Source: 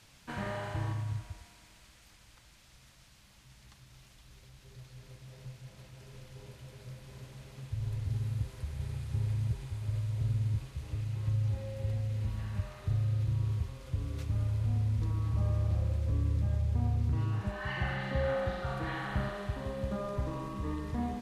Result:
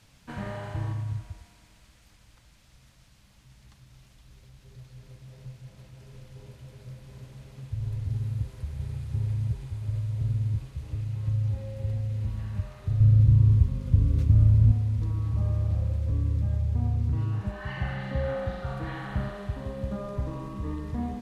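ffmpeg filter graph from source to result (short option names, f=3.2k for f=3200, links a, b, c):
-filter_complex "[0:a]asettb=1/sr,asplit=3[a][b][c];[a]atrim=end=13.004[d];[b]atrim=start=13:end=14.72,asetpts=PTS-STARTPTS,afade=t=in:d=0.004:c=qsin,afade=t=out:st=1.716:d=0.004:c=qsin,lowshelf=f=350:g=10,bandreject=f=760:w=11,aeval=exprs='val(0)+0.02*(sin(2*PI*50*n/s)+sin(2*PI*2*50*n/s)/2+sin(2*PI*3*50*n/s)/3+sin(2*PI*4*50*n/s)/4+sin(2*PI*5*50*n/s)/5)':c=same[e];[c]atrim=start=14.716[f];[d][e]acrossfade=d=0.004:c1=hsin:c2=qsin[g];[g][f]acrossfade=d=0.004:c1=qsin:c2=hsin,lowshelf=f=500:g=6,bandreject=f=360:w=12,volume=-2dB"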